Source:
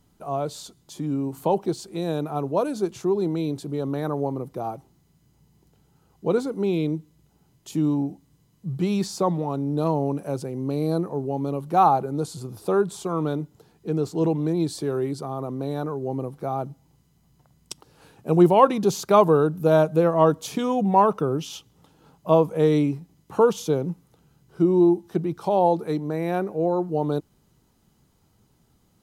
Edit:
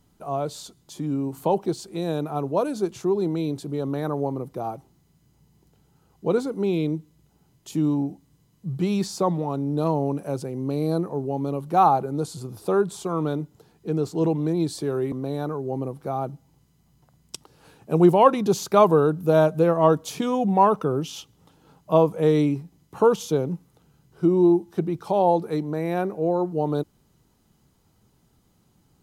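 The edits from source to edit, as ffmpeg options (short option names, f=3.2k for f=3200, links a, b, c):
-filter_complex "[0:a]asplit=2[a][b];[a]atrim=end=15.122[c];[b]atrim=start=15.488[d];[c][d]acrossfade=d=0.004:c1=hsin:c2=hsin"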